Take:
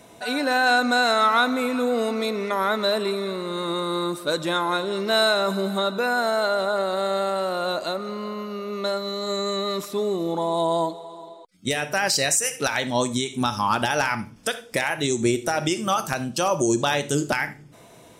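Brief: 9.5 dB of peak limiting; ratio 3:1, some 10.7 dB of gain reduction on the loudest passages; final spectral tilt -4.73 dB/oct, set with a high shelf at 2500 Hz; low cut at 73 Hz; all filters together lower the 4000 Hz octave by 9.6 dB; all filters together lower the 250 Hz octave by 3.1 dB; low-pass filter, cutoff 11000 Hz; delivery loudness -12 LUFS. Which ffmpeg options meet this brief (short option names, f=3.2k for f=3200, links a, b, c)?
-af "highpass=73,lowpass=11k,equalizer=f=250:t=o:g=-4,highshelf=f=2.5k:g=-8.5,equalizer=f=4k:t=o:g=-4,acompressor=threshold=-33dB:ratio=3,volume=25dB,alimiter=limit=-3dB:level=0:latency=1"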